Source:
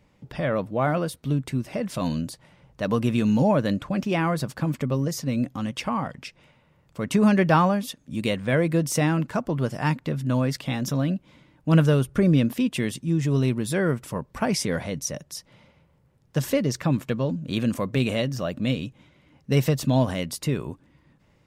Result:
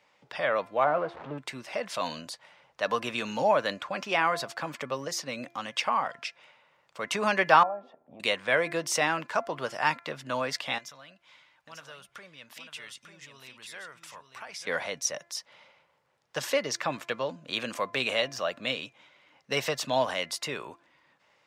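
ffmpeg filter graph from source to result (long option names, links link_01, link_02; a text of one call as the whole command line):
ffmpeg -i in.wav -filter_complex "[0:a]asettb=1/sr,asplit=3[link_01][link_02][link_03];[link_01]atrim=end=0.844[link_04];[link_02]atrim=start=0.84:end=1.38,asetpts=PTS-STARTPTS,afade=type=in:duration=0.004:curve=qsin,afade=type=out:start_time=0.536:duration=0.004:curve=qsin,aeval=exprs='val(0)+0.5*0.0355*sgn(val(0))':channel_layout=same,lowpass=1100[link_05];[link_03]atrim=start=1.376[link_06];[link_04][link_05]acrossfade=duration=0.004:curve1=hsin:curve2=qsin[link_07];[link_07][link_06]acrossfade=duration=0.004:curve1=qsin:curve2=hsin,asettb=1/sr,asplit=3[link_08][link_09][link_10];[link_08]atrim=end=7.634[link_11];[link_09]atrim=start=7.63:end=8.2,asetpts=PTS-STARTPTS,afade=type=in:duration=0.004:curve=qsin,afade=type=out:start_time=0.566:duration=0.004:curve=qsin,bandreject=frequency=78.6:width_type=h:width=4,bandreject=frequency=157.2:width_type=h:width=4,bandreject=frequency=235.8:width_type=h:width=4,bandreject=frequency=314.4:width_type=h:width=4,bandreject=frequency=393:width_type=h:width=4,bandreject=frequency=471.6:width_type=h:width=4,acompressor=threshold=-32dB:ratio=12:attack=3.2:release=140:knee=1:detection=peak,lowpass=frequency=720:width_type=q:width=4.6[link_12];[link_10]atrim=start=8.196[link_13];[link_11][link_12]acrossfade=duration=0.004:curve1=hsin:curve2=qsin[link_14];[link_14][link_13]acrossfade=duration=0.004:curve1=qsin:curve2=hsin,asettb=1/sr,asplit=3[link_15][link_16][link_17];[link_15]atrim=end=10.784[link_18];[link_16]atrim=start=10.78:end=14.67,asetpts=PTS-STARTPTS,afade=type=in:duration=0.004:curve=qsin,afade=type=out:start_time=3.886:duration=0.004:curve=qsin,equalizer=frequency=320:width=0.55:gain=-11.5,acompressor=threshold=-43dB:ratio=3:attack=3.2:release=140:knee=1:detection=peak,aecho=1:1:894:0.447,atrim=end_sample=171549[link_19];[link_17]atrim=start=14.666[link_20];[link_18][link_19]acrossfade=duration=0.004:curve1=hsin:curve2=qsin[link_21];[link_21][link_20]acrossfade=duration=0.004:curve1=qsin:curve2=hsin,highpass=frequency=260:poles=1,acrossover=split=550 7000:gain=0.126 1 0.251[link_22][link_23][link_24];[link_22][link_23][link_24]amix=inputs=3:normalize=0,bandreject=frequency=342.3:width_type=h:width=4,bandreject=frequency=684.6:width_type=h:width=4,bandreject=frequency=1026.9:width_type=h:width=4,bandreject=frequency=1369.2:width_type=h:width=4,bandreject=frequency=1711.5:width_type=h:width=4,bandreject=frequency=2053.8:width_type=h:width=4,bandreject=frequency=2396.1:width_type=h:width=4,volume=3.5dB" out.wav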